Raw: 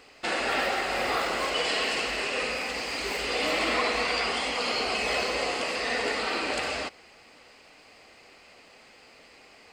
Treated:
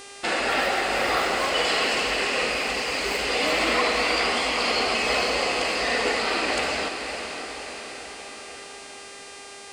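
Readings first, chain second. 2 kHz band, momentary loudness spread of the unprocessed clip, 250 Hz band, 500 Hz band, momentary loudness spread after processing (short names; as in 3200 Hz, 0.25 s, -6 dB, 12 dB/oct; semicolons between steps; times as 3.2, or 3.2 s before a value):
+4.5 dB, 5 LU, +4.5 dB, +4.5 dB, 17 LU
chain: diffused feedback echo 0.529 s, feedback 60%, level -8 dB; buzz 400 Hz, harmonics 25, -47 dBFS -2 dB/oct; gain +3.5 dB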